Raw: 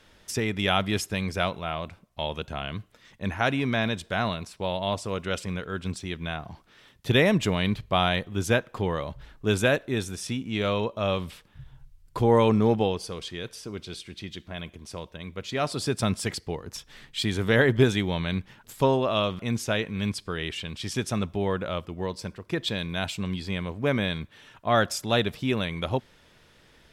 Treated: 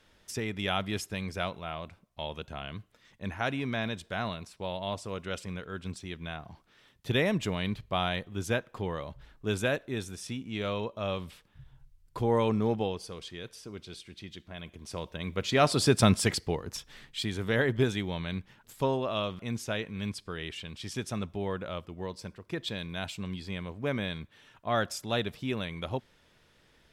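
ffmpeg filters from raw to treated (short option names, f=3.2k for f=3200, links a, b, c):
-af "volume=4dB,afade=t=in:st=14.61:d=0.78:silence=0.298538,afade=t=out:st=16.02:d=1.28:silence=0.298538"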